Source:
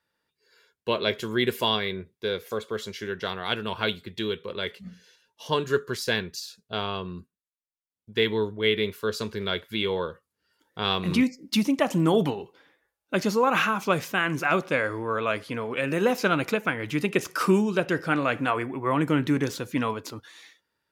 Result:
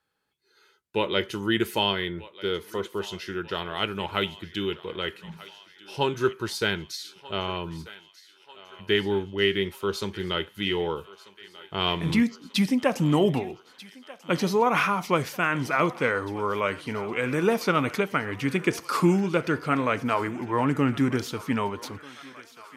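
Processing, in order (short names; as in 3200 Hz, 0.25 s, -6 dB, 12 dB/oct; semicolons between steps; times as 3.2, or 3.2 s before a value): thinning echo 1.139 s, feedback 71%, high-pass 630 Hz, level -17.5 dB; speed mistake 48 kHz file played as 44.1 kHz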